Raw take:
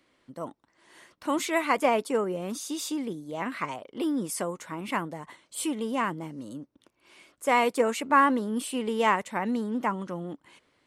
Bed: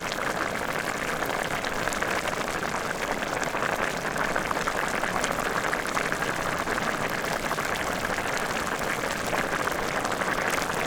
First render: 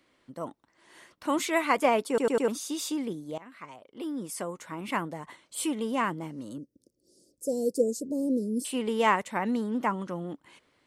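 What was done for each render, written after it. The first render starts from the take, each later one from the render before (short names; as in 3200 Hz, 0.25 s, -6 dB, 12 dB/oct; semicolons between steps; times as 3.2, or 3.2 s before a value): 2.08 stutter in place 0.10 s, 4 plays; 3.38–5.09 fade in, from -20 dB; 6.58–8.65 Chebyshev band-stop 530–4900 Hz, order 4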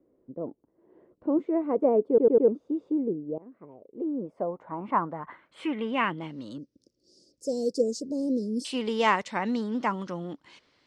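low-pass sweep 440 Hz -> 5100 Hz, 3.99–6.7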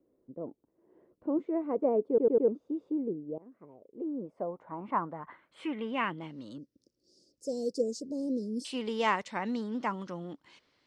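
gain -5 dB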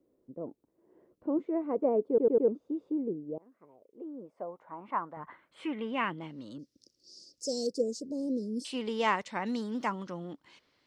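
3.38–5.17 low shelf 440 Hz -10.5 dB; 6.59–7.67 bell 5200 Hz +14.5 dB 1.7 oct; 9.46–9.9 high shelf 5000 Hz +10.5 dB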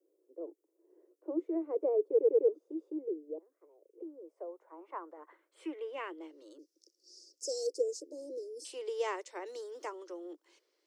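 steep high-pass 320 Hz 96 dB/oct; band shelf 1700 Hz -10.5 dB 3 oct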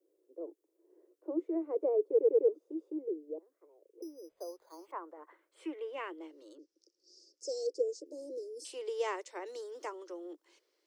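4.02–4.92 careless resampling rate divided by 8×, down none, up hold; 6.55–8.06 air absorption 88 m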